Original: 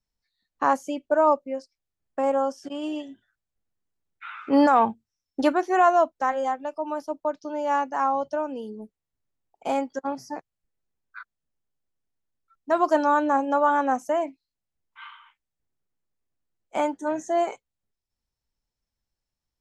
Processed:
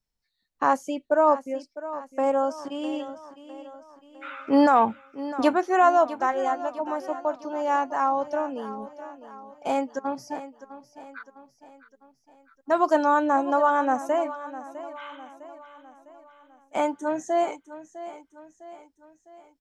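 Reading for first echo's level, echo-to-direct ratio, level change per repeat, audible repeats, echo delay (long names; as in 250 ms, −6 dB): −14.5 dB, −13.5 dB, −6.0 dB, 4, 655 ms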